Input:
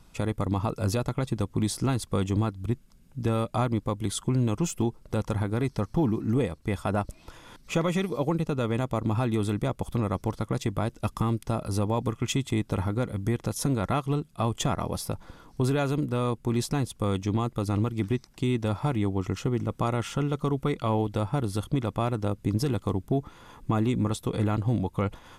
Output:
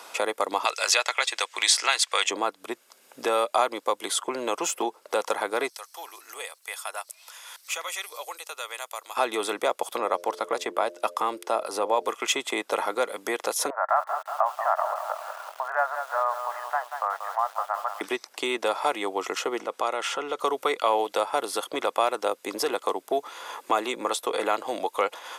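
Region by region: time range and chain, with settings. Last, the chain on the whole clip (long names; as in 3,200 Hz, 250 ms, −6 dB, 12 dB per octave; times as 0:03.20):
0:00.65–0:02.31: high-pass filter 780 Hz + flat-topped bell 3,800 Hz +12.5 dB 2.6 octaves
0:05.69–0:09.17: high-pass filter 440 Hz + first difference
0:09.98–0:12.08: high-shelf EQ 2,800 Hz −8.5 dB + hum removal 87.35 Hz, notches 7
0:13.70–0:18.01: Chebyshev band-pass filter 620–1,800 Hz, order 4 + feedback echo at a low word length 185 ms, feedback 55%, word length 9 bits, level −9 dB
0:19.59–0:20.40: downward compressor 4 to 1, threshold −27 dBFS + high-shelf EQ 9,900 Hz −10.5 dB
whole clip: high-pass filter 490 Hz 24 dB per octave; multiband upward and downward compressor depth 40%; level +9 dB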